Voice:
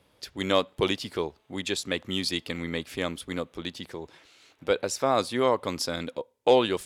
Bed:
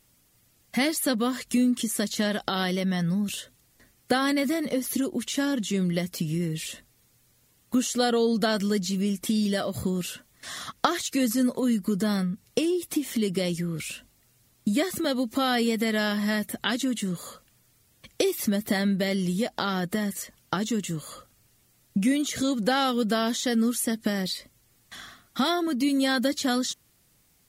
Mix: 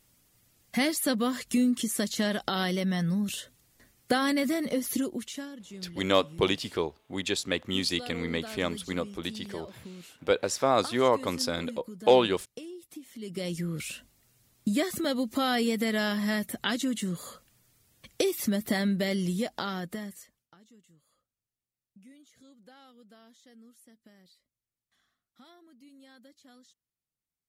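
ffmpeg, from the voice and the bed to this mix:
-filter_complex "[0:a]adelay=5600,volume=0dB[a];[1:a]volume=13dB,afade=t=out:st=4.96:d=0.54:silence=0.16788,afade=t=in:st=13.18:d=0.48:silence=0.177828,afade=t=out:st=19.28:d=1.2:silence=0.0375837[b];[a][b]amix=inputs=2:normalize=0"

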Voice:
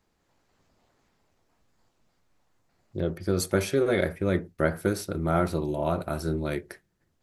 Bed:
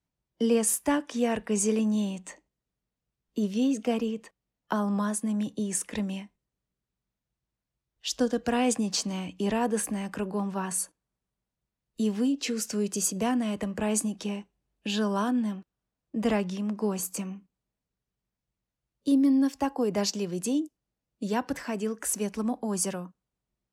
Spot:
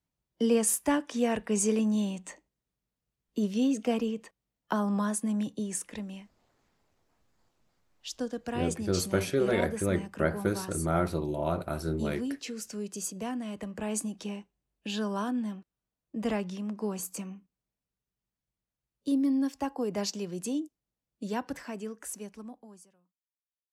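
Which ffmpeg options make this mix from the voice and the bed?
-filter_complex "[0:a]adelay=5600,volume=-3dB[a];[1:a]volume=2.5dB,afade=t=out:st=5.36:d=0.66:silence=0.446684,afade=t=in:st=13.41:d=0.74:silence=0.668344,afade=t=out:st=21.38:d=1.5:silence=0.0334965[b];[a][b]amix=inputs=2:normalize=0"

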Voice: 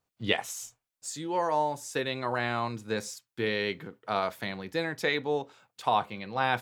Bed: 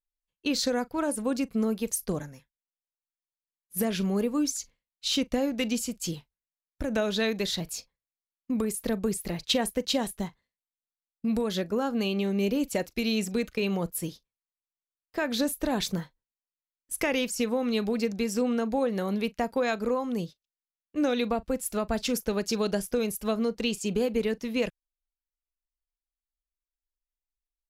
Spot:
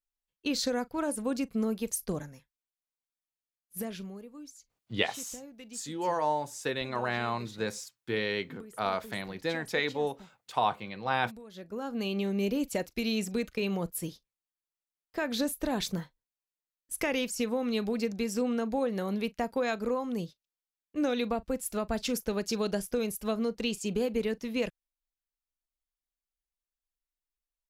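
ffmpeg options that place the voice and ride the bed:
-filter_complex "[0:a]adelay=4700,volume=-1.5dB[a];[1:a]volume=14dB,afade=t=out:st=3.35:d=0.86:silence=0.141254,afade=t=in:st=11.52:d=0.65:silence=0.141254[b];[a][b]amix=inputs=2:normalize=0"

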